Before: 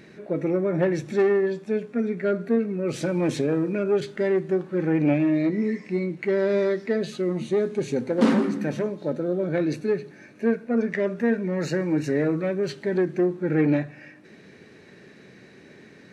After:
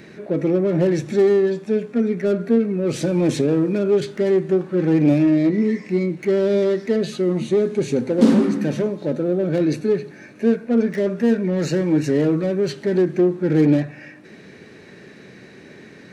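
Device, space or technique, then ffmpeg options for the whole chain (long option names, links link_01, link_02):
one-band saturation: -filter_complex "[0:a]acrossover=split=570|3900[link_01][link_02][link_03];[link_02]asoftclip=type=tanh:threshold=-38dB[link_04];[link_01][link_04][link_03]amix=inputs=3:normalize=0,volume=6dB"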